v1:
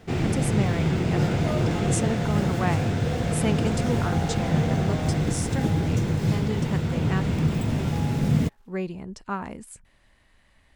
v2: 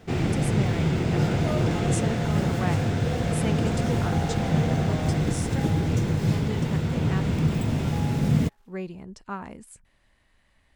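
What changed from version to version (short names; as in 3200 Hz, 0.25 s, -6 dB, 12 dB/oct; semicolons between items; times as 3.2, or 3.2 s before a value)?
speech -4.0 dB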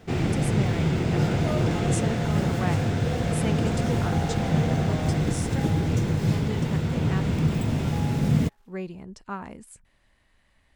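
none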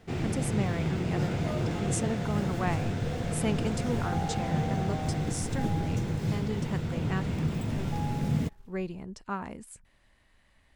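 first sound -6.5 dB; second sound: remove HPF 590 Hz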